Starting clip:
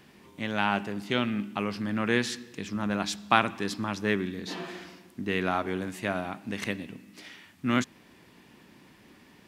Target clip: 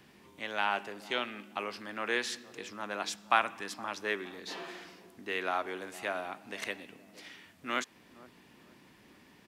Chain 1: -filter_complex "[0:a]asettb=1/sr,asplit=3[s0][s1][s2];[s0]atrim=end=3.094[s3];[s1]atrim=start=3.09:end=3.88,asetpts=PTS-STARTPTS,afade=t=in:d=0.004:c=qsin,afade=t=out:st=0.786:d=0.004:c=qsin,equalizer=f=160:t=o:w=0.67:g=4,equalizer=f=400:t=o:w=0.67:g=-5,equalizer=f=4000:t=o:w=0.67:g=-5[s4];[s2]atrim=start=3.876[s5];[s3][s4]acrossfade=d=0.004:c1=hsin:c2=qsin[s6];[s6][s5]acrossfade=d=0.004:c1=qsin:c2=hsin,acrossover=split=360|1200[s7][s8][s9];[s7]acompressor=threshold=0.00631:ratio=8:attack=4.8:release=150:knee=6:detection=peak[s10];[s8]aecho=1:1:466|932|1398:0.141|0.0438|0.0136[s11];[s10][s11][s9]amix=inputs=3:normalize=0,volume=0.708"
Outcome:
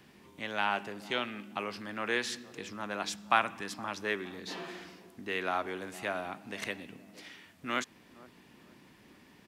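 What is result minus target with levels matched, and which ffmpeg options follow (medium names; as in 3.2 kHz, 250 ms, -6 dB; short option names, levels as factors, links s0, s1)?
compression: peak gain reduction -9 dB
-filter_complex "[0:a]asettb=1/sr,asplit=3[s0][s1][s2];[s0]atrim=end=3.094[s3];[s1]atrim=start=3.09:end=3.88,asetpts=PTS-STARTPTS,afade=t=in:d=0.004:c=qsin,afade=t=out:st=0.786:d=0.004:c=qsin,equalizer=f=160:t=o:w=0.67:g=4,equalizer=f=400:t=o:w=0.67:g=-5,equalizer=f=4000:t=o:w=0.67:g=-5[s4];[s2]atrim=start=3.876[s5];[s3][s4]acrossfade=d=0.004:c1=hsin:c2=qsin[s6];[s6][s5]acrossfade=d=0.004:c1=qsin:c2=hsin,acrossover=split=360|1200[s7][s8][s9];[s7]acompressor=threshold=0.00188:ratio=8:attack=4.8:release=150:knee=6:detection=peak[s10];[s8]aecho=1:1:466|932|1398:0.141|0.0438|0.0136[s11];[s10][s11][s9]amix=inputs=3:normalize=0,volume=0.708"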